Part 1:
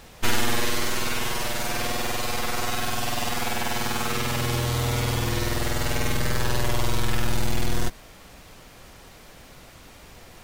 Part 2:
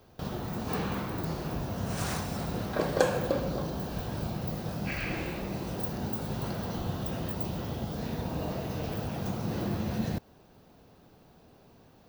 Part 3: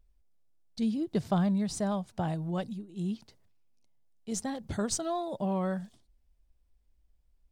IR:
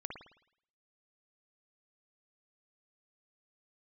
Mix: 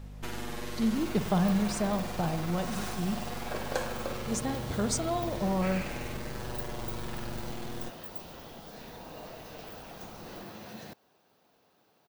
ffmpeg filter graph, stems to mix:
-filter_complex "[0:a]acrossover=split=150[link_01][link_02];[link_01]acompressor=threshold=-36dB:ratio=2.5[link_03];[link_03][link_02]amix=inputs=2:normalize=0,tiltshelf=frequency=970:gain=4,acompressor=threshold=-24dB:ratio=6,volume=-10dB[link_04];[1:a]highpass=frequency=710:poles=1,adelay=750,volume=-4.5dB[link_05];[2:a]aeval=exprs='val(0)+0.00708*(sin(2*PI*50*n/s)+sin(2*PI*2*50*n/s)/2+sin(2*PI*3*50*n/s)/3+sin(2*PI*4*50*n/s)/4+sin(2*PI*5*50*n/s)/5)':channel_layout=same,volume=-2.5dB,asplit=2[link_06][link_07];[link_07]volume=-3dB[link_08];[3:a]atrim=start_sample=2205[link_09];[link_08][link_09]afir=irnorm=-1:irlink=0[link_10];[link_04][link_05][link_06][link_10]amix=inputs=4:normalize=0"

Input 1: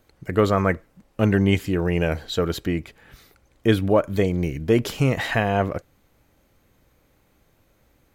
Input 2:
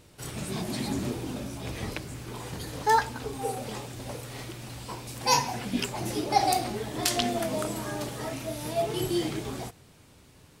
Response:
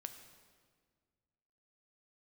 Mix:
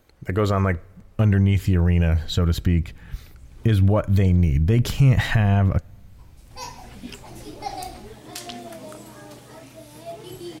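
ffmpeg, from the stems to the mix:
-filter_complex "[0:a]asubboost=boost=10:cutoff=140,volume=1dB,asplit=3[link_01][link_02][link_03];[link_02]volume=-21dB[link_04];[1:a]adelay=1300,volume=-8.5dB[link_05];[link_03]apad=whole_len=524823[link_06];[link_05][link_06]sidechaincompress=threshold=-34dB:ratio=10:attack=8.3:release=704[link_07];[2:a]atrim=start_sample=2205[link_08];[link_04][link_08]afir=irnorm=-1:irlink=0[link_09];[link_01][link_07][link_09]amix=inputs=3:normalize=0,alimiter=limit=-9dB:level=0:latency=1:release=97"

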